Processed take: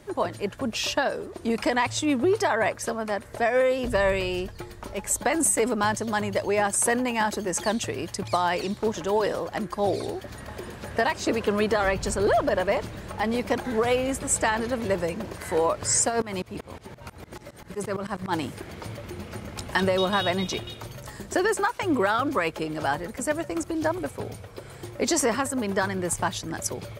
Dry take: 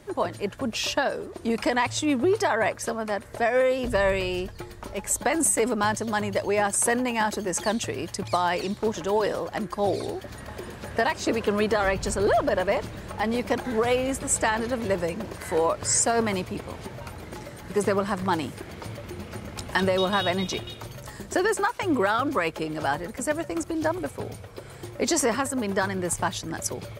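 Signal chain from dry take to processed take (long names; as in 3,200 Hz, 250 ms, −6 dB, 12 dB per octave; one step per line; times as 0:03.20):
0:16.08–0:18.32: shaped tremolo saw up 4.5 Hz → 11 Hz, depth 95%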